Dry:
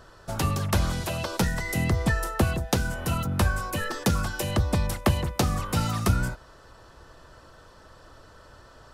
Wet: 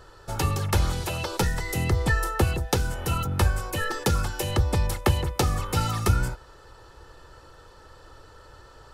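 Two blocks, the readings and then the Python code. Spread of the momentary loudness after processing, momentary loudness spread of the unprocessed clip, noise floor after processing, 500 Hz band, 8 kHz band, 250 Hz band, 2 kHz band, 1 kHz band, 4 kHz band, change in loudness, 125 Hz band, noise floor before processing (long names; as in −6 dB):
5 LU, 4 LU, −50 dBFS, +1.0 dB, +1.0 dB, −3.0 dB, 0.0 dB, +1.0 dB, +1.0 dB, +0.5 dB, +1.0 dB, −52 dBFS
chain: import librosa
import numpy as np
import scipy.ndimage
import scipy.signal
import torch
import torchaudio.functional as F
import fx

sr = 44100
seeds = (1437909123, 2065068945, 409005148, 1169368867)

y = x + 0.47 * np.pad(x, (int(2.3 * sr / 1000.0), 0))[:len(x)]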